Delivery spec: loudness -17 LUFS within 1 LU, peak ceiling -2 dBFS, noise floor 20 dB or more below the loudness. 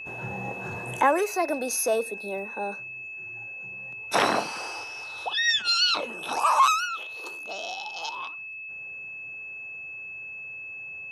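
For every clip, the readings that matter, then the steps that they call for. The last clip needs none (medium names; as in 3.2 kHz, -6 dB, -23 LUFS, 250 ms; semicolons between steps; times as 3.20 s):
steady tone 2.6 kHz; tone level -36 dBFS; loudness -27.5 LUFS; peak level -10.0 dBFS; loudness target -17.0 LUFS
-> band-stop 2.6 kHz, Q 30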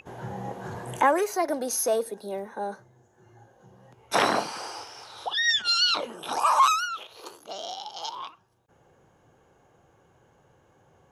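steady tone not found; loudness -26.0 LUFS; peak level -10.0 dBFS; loudness target -17.0 LUFS
-> trim +9 dB; peak limiter -2 dBFS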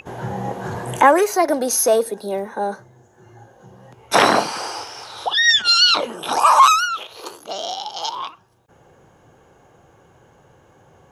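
loudness -17.0 LUFS; peak level -2.0 dBFS; noise floor -54 dBFS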